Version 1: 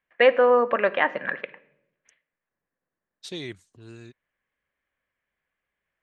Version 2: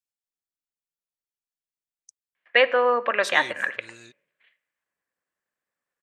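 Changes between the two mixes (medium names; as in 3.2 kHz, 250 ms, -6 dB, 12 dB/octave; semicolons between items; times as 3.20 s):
first voice: entry +2.35 s; master: add tilt EQ +3.5 dB/octave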